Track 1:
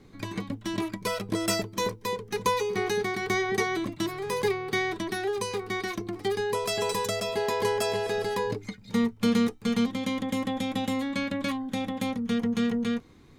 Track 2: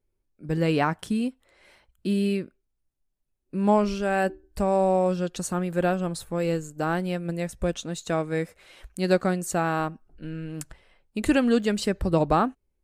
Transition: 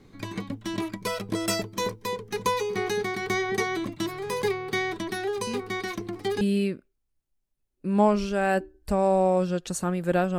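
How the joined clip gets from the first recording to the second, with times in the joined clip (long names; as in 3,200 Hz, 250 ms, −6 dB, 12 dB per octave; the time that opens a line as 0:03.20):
track 1
0:05.47: mix in track 2 from 0:01.16 0.94 s −8.5 dB
0:06.41: continue with track 2 from 0:02.10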